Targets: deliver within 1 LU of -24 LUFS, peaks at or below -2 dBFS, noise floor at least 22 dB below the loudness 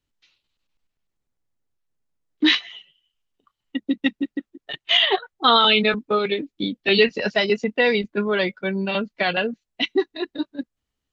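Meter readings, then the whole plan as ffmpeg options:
loudness -21.0 LUFS; peak -4.5 dBFS; loudness target -24.0 LUFS
-> -af "volume=-3dB"

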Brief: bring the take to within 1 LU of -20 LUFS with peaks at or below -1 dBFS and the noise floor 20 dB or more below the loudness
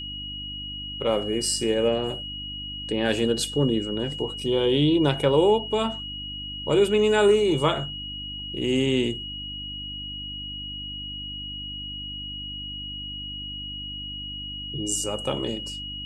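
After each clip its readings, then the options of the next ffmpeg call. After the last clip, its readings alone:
hum 50 Hz; harmonics up to 300 Hz; hum level -38 dBFS; steady tone 2900 Hz; tone level -33 dBFS; loudness -26.0 LUFS; peak -7.5 dBFS; loudness target -20.0 LUFS
-> -af "bandreject=f=50:t=h:w=4,bandreject=f=100:t=h:w=4,bandreject=f=150:t=h:w=4,bandreject=f=200:t=h:w=4,bandreject=f=250:t=h:w=4,bandreject=f=300:t=h:w=4"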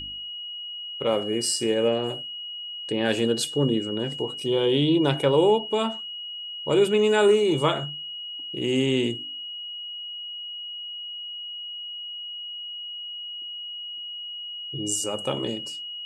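hum none; steady tone 2900 Hz; tone level -33 dBFS
-> -af "bandreject=f=2.9k:w=30"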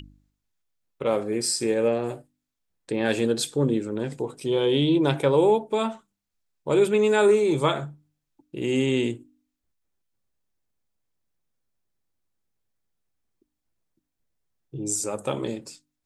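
steady tone none; loudness -24.0 LUFS; peak -7.5 dBFS; loudness target -20.0 LUFS
-> -af "volume=4dB"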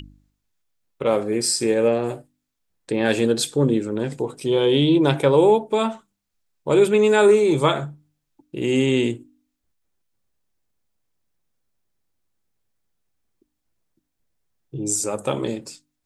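loudness -20.0 LUFS; peak -3.5 dBFS; noise floor -77 dBFS

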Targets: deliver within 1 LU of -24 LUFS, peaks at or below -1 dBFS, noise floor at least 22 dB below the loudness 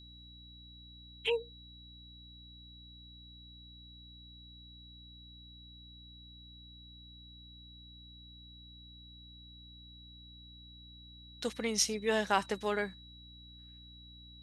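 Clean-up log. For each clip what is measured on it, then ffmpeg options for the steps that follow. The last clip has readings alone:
hum 60 Hz; harmonics up to 300 Hz; hum level -53 dBFS; steady tone 3900 Hz; tone level -54 dBFS; loudness -33.0 LUFS; peak -13.0 dBFS; loudness target -24.0 LUFS
-> -af "bandreject=f=60:t=h:w=4,bandreject=f=120:t=h:w=4,bandreject=f=180:t=h:w=4,bandreject=f=240:t=h:w=4,bandreject=f=300:t=h:w=4"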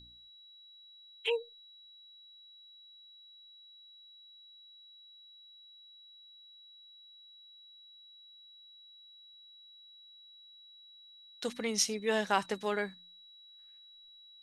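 hum none; steady tone 3900 Hz; tone level -54 dBFS
-> -af "bandreject=f=3.9k:w=30"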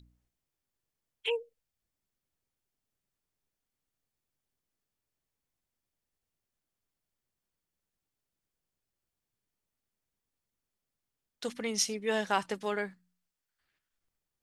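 steady tone none; loudness -33.5 LUFS; peak -13.0 dBFS; loudness target -24.0 LUFS
-> -af "volume=9.5dB"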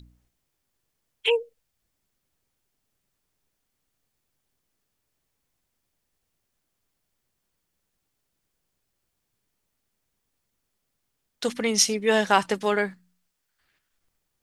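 loudness -24.0 LUFS; peak -3.5 dBFS; noise floor -79 dBFS

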